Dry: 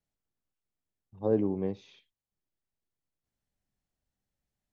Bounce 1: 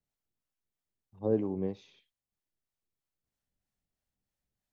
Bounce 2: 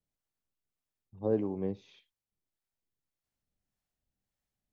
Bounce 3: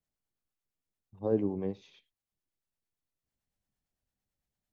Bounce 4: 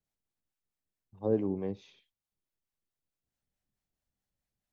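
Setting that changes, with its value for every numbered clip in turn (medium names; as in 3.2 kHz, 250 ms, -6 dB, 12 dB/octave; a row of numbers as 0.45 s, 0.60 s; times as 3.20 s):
harmonic tremolo, rate: 3.1 Hz, 1.7 Hz, 8.9 Hz, 4.6 Hz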